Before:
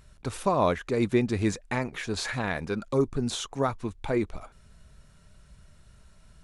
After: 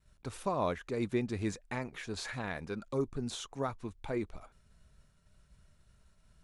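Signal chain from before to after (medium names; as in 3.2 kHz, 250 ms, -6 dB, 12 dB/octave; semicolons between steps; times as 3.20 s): expander -51 dBFS; trim -8.5 dB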